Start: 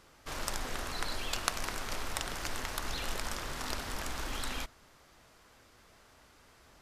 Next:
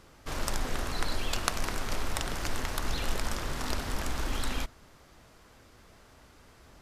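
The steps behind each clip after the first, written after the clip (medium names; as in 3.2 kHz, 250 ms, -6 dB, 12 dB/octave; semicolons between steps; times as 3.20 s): bass shelf 460 Hz +6.5 dB; trim +1.5 dB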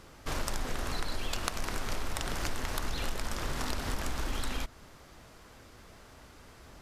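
compression 4:1, threshold -32 dBFS, peak gain reduction 9.5 dB; trim +3 dB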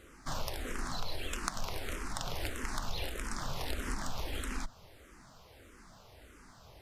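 barber-pole phaser -1.6 Hz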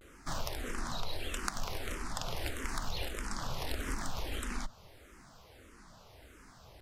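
vibrato 0.82 Hz 92 cents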